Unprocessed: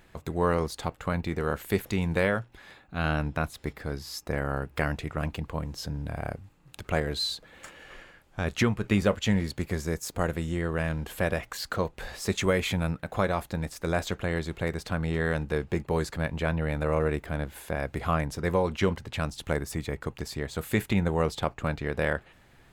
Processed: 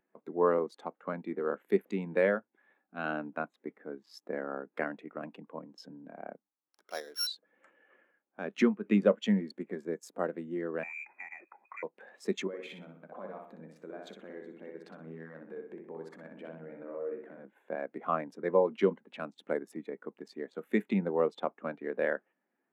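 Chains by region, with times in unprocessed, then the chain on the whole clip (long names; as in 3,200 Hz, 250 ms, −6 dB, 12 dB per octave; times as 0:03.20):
0:06.36–0:07.27: samples sorted by size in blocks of 8 samples + high-pass filter 990 Hz 6 dB per octave
0:10.83–0:11.83: downward compressor, threshold −32 dBFS + voice inversion scrambler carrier 2,500 Hz
0:12.47–0:17.45: downward compressor, threshold −32 dBFS + repeating echo 62 ms, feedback 52%, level −3 dB
whole clip: adaptive Wiener filter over 9 samples; Butterworth high-pass 200 Hz 36 dB per octave; every bin expanded away from the loudest bin 1.5 to 1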